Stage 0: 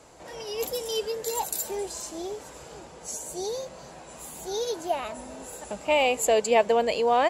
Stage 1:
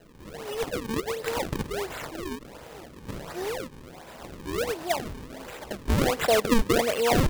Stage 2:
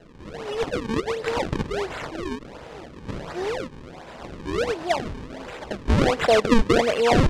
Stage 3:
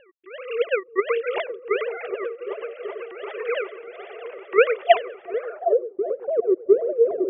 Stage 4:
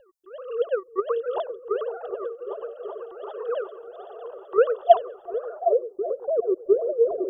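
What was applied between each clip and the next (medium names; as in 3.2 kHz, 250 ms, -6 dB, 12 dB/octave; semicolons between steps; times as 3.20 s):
decimation with a swept rate 37×, swing 160% 1.4 Hz
distance through air 87 m; trim +4.5 dB
formants replaced by sine waves; delay with an opening low-pass 381 ms, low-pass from 200 Hz, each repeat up 1 oct, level -3 dB; low-pass sweep 2.8 kHz -> 320 Hz, 5.31–5.88 s
Butterworth band-stop 2.2 kHz, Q 0.57; peaking EQ 240 Hz -15 dB 2.5 oct; trim +7.5 dB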